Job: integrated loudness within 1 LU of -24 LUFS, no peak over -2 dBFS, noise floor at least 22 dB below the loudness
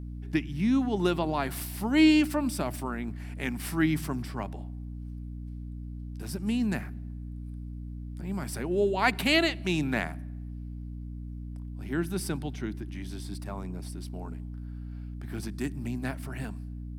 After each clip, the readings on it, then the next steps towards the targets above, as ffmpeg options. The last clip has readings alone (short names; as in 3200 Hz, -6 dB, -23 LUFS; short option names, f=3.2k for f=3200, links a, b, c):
hum 60 Hz; harmonics up to 300 Hz; hum level -36 dBFS; loudness -30.0 LUFS; peak -9.0 dBFS; loudness target -24.0 LUFS
-> -af "bandreject=f=60:t=h:w=4,bandreject=f=120:t=h:w=4,bandreject=f=180:t=h:w=4,bandreject=f=240:t=h:w=4,bandreject=f=300:t=h:w=4"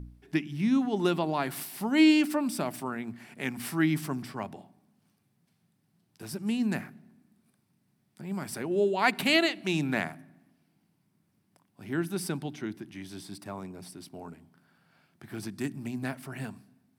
hum none; loudness -29.5 LUFS; peak -9.0 dBFS; loudness target -24.0 LUFS
-> -af "volume=5.5dB"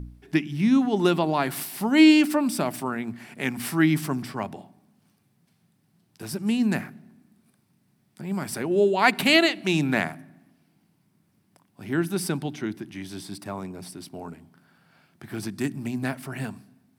loudness -24.0 LUFS; peak -3.5 dBFS; noise floor -67 dBFS